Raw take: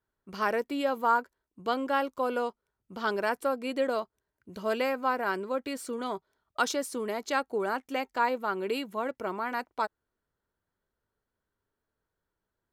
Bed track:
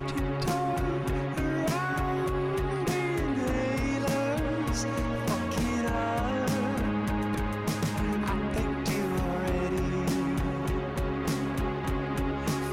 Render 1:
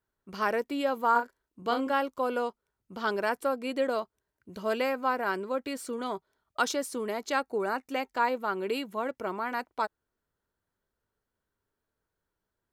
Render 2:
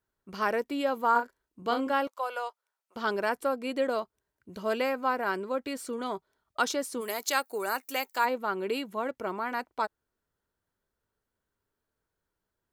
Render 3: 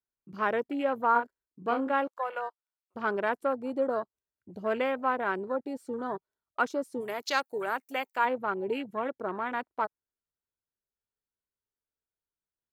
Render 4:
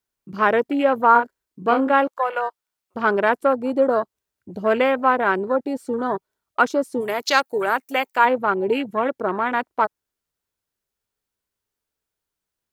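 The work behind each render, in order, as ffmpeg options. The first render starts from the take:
ffmpeg -i in.wav -filter_complex "[0:a]asettb=1/sr,asplit=3[link_01][link_02][link_03];[link_01]atrim=end=1.114[link_04];[link_02]atrim=start=1.11:end=1.93,asetpts=PTS-STARTPTS,afade=type=in:duration=0.004:curve=qsin,afade=type=out:start_time=0.816:duration=0.004:curve=qsin,asplit=2[link_05][link_06];[link_06]adelay=38,volume=-6dB[link_07];[link_05][link_07]amix=inputs=2:normalize=0,atrim=end_sample=36162[link_08];[link_03]atrim=start=1.926[link_09];[link_04][link_08]acrossfade=duration=0.004:curve1=hsin:curve2=qsin[link_10];[link_10][link_09]acrossfade=duration=0.004:curve1=qsin:curve2=hsin,asettb=1/sr,asplit=3[link_11][link_12][link_13];[link_11]atrim=end=7.444[link_14];[link_12]atrim=start=7.44:end=7.91,asetpts=PTS-STARTPTS,afade=type=in:duration=0.004:curve=qsin,afade=type=out:start_time=0.466:duration=0.004:curve=qsin,asuperstop=centerf=3200:order=8:qfactor=5.9[link_15];[link_13]atrim=start=7.906[link_16];[link_14][link_15]acrossfade=duration=0.004:curve1=hsin:curve2=qsin[link_17];[link_17][link_16]acrossfade=duration=0.004:curve1=qsin:curve2=hsin" out.wav
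ffmpeg -i in.wav -filter_complex "[0:a]asettb=1/sr,asplit=3[link_01][link_02][link_03];[link_01]atrim=end=2.074[link_04];[link_02]atrim=start=2.07:end=2.96,asetpts=PTS-STARTPTS,afade=type=in:duration=0.004:curve=qsin,afade=type=out:start_time=0.886:duration=0.004:curve=qsin,highpass=frequency=610:width=0.5412,highpass=frequency=610:width=1.3066[link_05];[link_03]atrim=start=2.956[link_06];[link_04][link_05]acrossfade=duration=0.004:curve1=hsin:curve2=qsin[link_07];[link_07][link_06]acrossfade=duration=0.004:curve1=qsin:curve2=hsin,asplit=3[link_08][link_09][link_10];[link_08]afade=type=out:start_time=7:duration=0.02[link_11];[link_09]aemphasis=mode=production:type=riaa,afade=type=in:start_time=7:duration=0.02,afade=type=out:start_time=8.24:duration=0.02[link_12];[link_10]afade=type=in:start_time=8.24:duration=0.02[link_13];[link_11][link_12][link_13]amix=inputs=3:normalize=0" out.wav
ffmpeg -i in.wav -af "afwtdn=0.0141" out.wav
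ffmpeg -i in.wav -af "volume=10.5dB,alimiter=limit=-3dB:level=0:latency=1" out.wav

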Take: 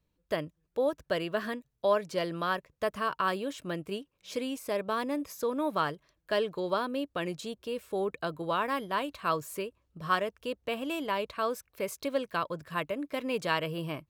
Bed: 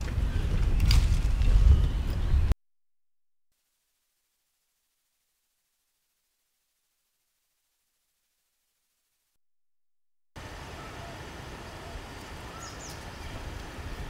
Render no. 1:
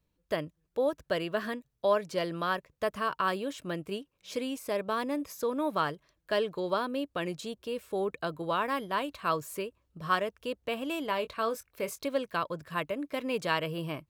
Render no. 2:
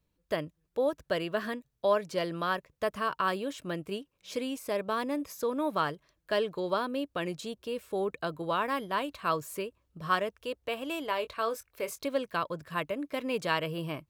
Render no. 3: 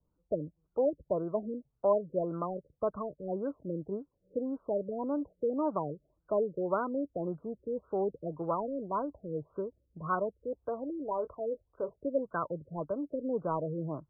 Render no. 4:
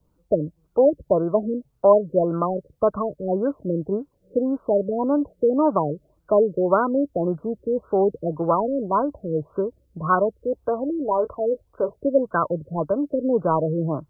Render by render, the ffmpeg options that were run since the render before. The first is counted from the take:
ffmpeg -i in.wav -filter_complex "[0:a]asettb=1/sr,asplit=3[link_01][link_02][link_03];[link_01]atrim=end=11.084[link_04];[link_02]atrim=start=11.08:end=12.02,asetpts=PTS-STARTPTS,afade=type=in:duration=0.004:curve=qsin,afade=type=out:start_time=0.936:duration=0.004:curve=qsin,asplit=2[link_05][link_06];[link_06]adelay=22,volume=-11.5dB[link_07];[link_05][link_07]amix=inputs=2:normalize=0,atrim=end_sample=41454[link_08];[link_03]atrim=start=12.016[link_09];[link_04][link_08]acrossfade=duration=0.004:curve1=hsin:curve2=qsin[link_10];[link_10][link_09]acrossfade=duration=0.004:curve1=qsin:curve2=hsin" out.wav
ffmpeg -i in.wav -filter_complex "[0:a]asettb=1/sr,asplit=3[link_01][link_02][link_03];[link_01]atrim=end=10.344[link_04];[link_02]atrim=start=10.34:end=11.89,asetpts=PTS-STARTPTS,afade=type=in:duration=0.004:curve=qsin,afade=type=out:start_time=1.546:duration=0.004:curve=qsin,equalizer=frequency=190:width_type=o:width=0.77:gain=-9[link_05];[link_03]atrim=start=11.886[link_06];[link_04][link_05]acrossfade=duration=0.004:curve1=hsin:curve2=qsin[link_07];[link_07][link_06]acrossfade=duration=0.004:curve1=qsin:curve2=hsin" out.wav
ffmpeg -i in.wav -filter_complex "[0:a]acrossover=split=140|980[link_01][link_02][link_03];[link_03]asoftclip=type=tanh:threshold=-31dB[link_04];[link_01][link_02][link_04]amix=inputs=3:normalize=0,afftfilt=real='re*lt(b*sr/1024,560*pow(1600/560,0.5+0.5*sin(2*PI*1.8*pts/sr)))':imag='im*lt(b*sr/1024,560*pow(1600/560,0.5+0.5*sin(2*PI*1.8*pts/sr)))':win_size=1024:overlap=0.75" out.wav
ffmpeg -i in.wav -af "volume=12dB" out.wav

